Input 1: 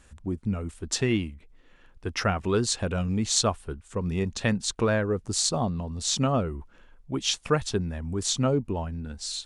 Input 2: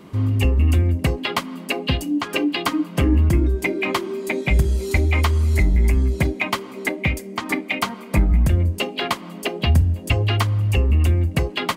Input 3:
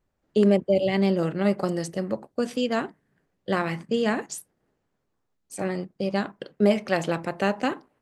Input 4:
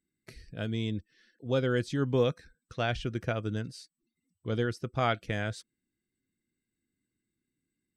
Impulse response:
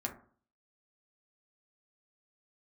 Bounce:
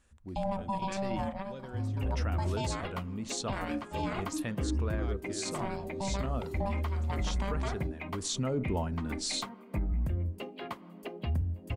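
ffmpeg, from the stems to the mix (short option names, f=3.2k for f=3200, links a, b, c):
-filter_complex "[0:a]volume=-2dB,afade=t=in:st=8.05:d=0.49:silence=0.266073,asplit=3[a][b][c];[b]volume=-13dB[d];[1:a]equalizer=f=6.9k:w=0.33:g=-13,adelay=1600,volume=-14dB[e];[2:a]bandreject=f=60:t=h:w=6,bandreject=f=120:t=h:w=6,bandreject=f=180:t=h:w=6,bandreject=f=240:t=h:w=6,bandreject=f=300:t=h:w=6,bandreject=f=360:t=h:w=6,bandreject=f=420:t=h:w=6,aeval=exprs='val(0)*sin(2*PI*390*n/s)':c=same,volume=-5.5dB,asplit=2[f][g];[g]volume=-16.5dB[h];[3:a]volume=18.5dB,asoftclip=hard,volume=-18.5dB,volume=-18dB,asplit=3[i][j][k];[i]atrim=end=2.23,asetpts=PTS-STARTPTS,afade=t=out:st=2.226:d=0.004:c=hsin[l];[j]atrim=start=2.23:end=4.24,asetpts=PTS-STARTPTS,volume=0[m];[k]atrim=start=4.24,asetpts=PTS-STARTPTS,afade=t=in:d=0.004:c=hsin[n];[l][m][n]concat=n=3:v=0:a=1[o];[c]apad=whole_len=353369[p];[f][p]sidechaingate=range=-25dB:threshold=-58dB:ratio=16:detection=peak[q];[4:a]atrim=start_sample=2205[r];[d][h]amix=inputs=2:normalize=0[s];[s][r]afir=irnorm=-1:irlink=0[t];[a][e][q][o][t]amix=inputs=5:normalize=0,alimiter=limit=-23.5dB:level=0:latency=1:release=31"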